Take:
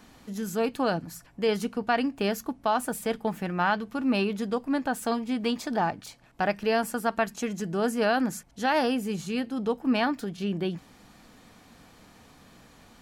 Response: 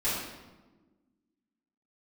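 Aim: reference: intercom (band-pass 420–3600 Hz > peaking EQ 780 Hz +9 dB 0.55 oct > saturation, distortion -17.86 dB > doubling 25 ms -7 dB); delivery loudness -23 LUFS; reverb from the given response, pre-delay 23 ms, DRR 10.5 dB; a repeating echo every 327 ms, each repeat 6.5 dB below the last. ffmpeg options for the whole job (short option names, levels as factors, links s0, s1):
-filter_complex "[0:a]aecho=1:1:327|654|981|1308|1635|1962:0.473|0.222|0.105|0.0491|0.0231|0.0109,asplit=2[s0][s1];[1:a]atrim=start_sample=2205,adelay=23[s2];[s1][s2]afir=irnorm=-1:irlink=0,volume=0.1[s3];[s0][s3]amix=inputs=2:normalize=0,highpass=420,lowpass=3600,equalizer=f=780:t=o:w=0.55:g=9,asoftclip=threshold=0.2,asplit=2[s4][s5];[s5]adelay=25,volume=0.447[s6];[s4][s6]amix=inputs=2:normalize=0,volume=1.41"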